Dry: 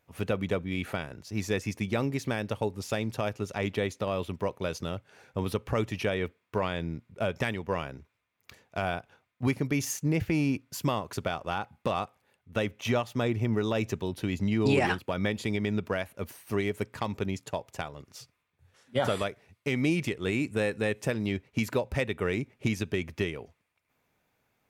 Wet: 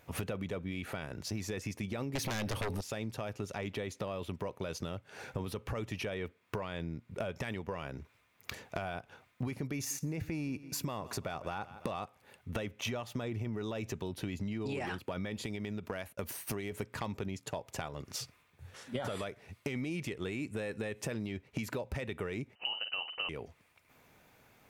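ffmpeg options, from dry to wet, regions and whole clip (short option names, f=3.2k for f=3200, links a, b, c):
-filter_complex "[0:a]asettb=1/sr,asplit=3[a][b][c];[a]atrim=end=2.154[d];[b]atrim=start=2.15:end=2.81,asetpts=PTS-STARTPTS,afade=t=in:d=0.004:c=qsin,afade=t=out:st=0.656:d=0.004:c=qsin,highshelf=f=6k:g=5.5,bandreject=f=7.3k:w=5.3,aeval=exprs='0.178*sin(PI/2*5.01*val(0)/0.178)':c=same[e];[c]atrim=start=2.806[f];[d][e]acrossfade=d=0.004:c1=hsin:c2=qsin[g];[g][f]acrossfade=d=0.004:c1=qsin:c2=hsin,asettb=1/sr,asplit=3[h][i][j];[h]atrim=end=9.744[k];[i]atrim=start=9.74:end=11.92,asetpts=PTS-STARTPTS,afade=t=in:d=0.004:c=qsin,afade=t=out:st=2.176:d=0.004:c=qsin,bandreject=f=3.1k:w=7.7,aecho=1:1:167|334|501:0.0708|0.0269|0.0102,atrim=end_sample=96138[l];[j]atrim=start=11.916[m];[k][l]acrossfade=d=0.004:c1=hsin:c2=qsin[n];[n][m]acrossfade=d=0.004:c1=qsin:c2=hsin,asettb=1/sr,asplit=3[o][p][q];[o]atrim=end=15.454[r];[p]atrim=start=15.45:end=16.72,asetpts=PTS-STARTPTS,afade=t=in:d=0.004:c=qsin,afade=t=out:st=1.266:d=0.004:c=qsin,highshelf=f=5.6k:g=4.5,acompressor=threshold=-34dB:ratio=3:attack=3.2:release=140:knee=1:detection=peak,agate=range=-33dB:threshold=-46dB:ratio=3:release=100:detection=peak[s];[q]atrim=start=16.716[t];[r][s]acrossfade=d=0.004:c1=hsin:c2=qsin[u];[u][t]acrossfade=d=0.004:c1=qsin:c2=hsin,asettb=1/sr,asplit=3[v][w][x];[v]atrim=end=22.554[y];[w]atrim=start=22.55:end=23.29,asetpts=PTS-STARTPTS,afade=t=in:d=0.004:c=qsin,afade=t=out:st=0.736:d=0.004:c=qsin,lowpass=f=2.6k:t=q:w=0.5098,lowpass=f=2.6k:t=q:w=0.6013,lowpass=f=2.6k:t=q:w=0.9,lowpass=f=2.6k:t=q:w=2.563,afreqshift=-3100,asplit=2[z][aa];[aa]adelay=47,volume=-11.5dB[ab];[z][ab]amix=inputs=2:normalize=0,atrim=end_sample=32634[ac];[x]atrim=start=23.286[ad];[y][ac]acrossfade=d=0.004:c1=hsin:c2=qsin[ae];[ae][ad]acrossfade=d=0.004:c1=qsin:c2=hsin,alimiter=limit=-22.5dB:level=0:latency=1:release=11,acompressor=threshold=-47dB:ratio=6,volume=11dB"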